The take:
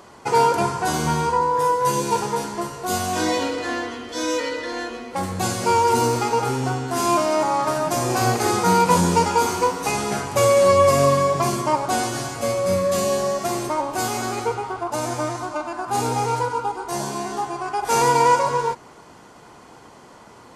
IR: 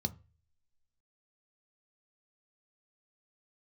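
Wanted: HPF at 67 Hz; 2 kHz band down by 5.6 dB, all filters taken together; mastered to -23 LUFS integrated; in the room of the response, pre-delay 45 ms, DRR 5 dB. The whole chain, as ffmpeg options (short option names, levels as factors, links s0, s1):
-filter_complex "[0:a]highpass=67,equalizer=f=2000:t=o:g=-8,asplit=2[s0][s1];[1:a]atrim=start_sample=2205,adelay=45[s2];[s1][s2]afir=irnorm=-1:irlink=0,volume=0.501[s3];[s0][s3]amix=inputs=2:normalize=0,volume=0.668"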